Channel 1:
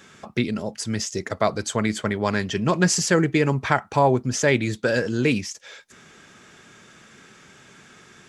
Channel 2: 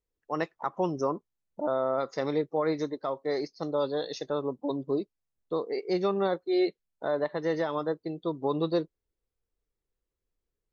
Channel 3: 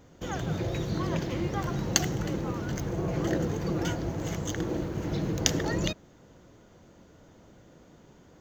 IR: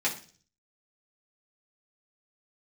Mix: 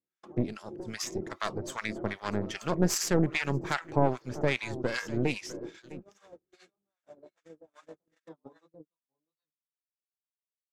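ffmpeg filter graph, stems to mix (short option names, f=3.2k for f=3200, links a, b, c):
-filter_complex "[0:a]aeval=exprs='0.75*(cos(1*acos(clip(val(0)/0.75,-1,1)))-cos(1*PI/2))+0.119*(cos(6*acos(clip(val(0)/0.75,-1,1)))-cos(6*PI/2))':c=same,volume=-6dB,asplit=2[a][b];[b]volume=-16.5dB[c];[1:a]equalizer=f=380:t=o:w=0.43:g=-13.5,flanger=delay=18.5:depth=4.9:speed=2.4,volume=2dB,asplit=2[d][e];[e]volume=-15dB[f];[2:a]equalizer=f=360:t=o:w=0.3:g=12.5,volume=-3dB,asplit=2[g][h];[h]volume=-24dB[i];[d][g]amix=inputs=2:normalize=0,bandpass=f=320:t=q:w=1.2:csg=0,acompressor=threshold=-36dB:ratio=12,volume=0dB[j];[c][f][i]amix=inputs=3:normalize=0,aecho=0:1:653:1[k];[a][j][k]amix=inputs=3:normalize=0,agate=range=-38dB:threshold=-37dB:ratio=16:detection=peak,acrossover=split=990[l][m];[l]aeval=exprs='val(0)*(1-1/2+1/2*cos(2*PI*2.5*n/s))':c=same[n];[m]aeval=exprs='val(0)*(1-1/2-1/2*cos(2*PI*2.5*n/s))':c=same[o];[n][o]amix=inputs=2:normalize=0"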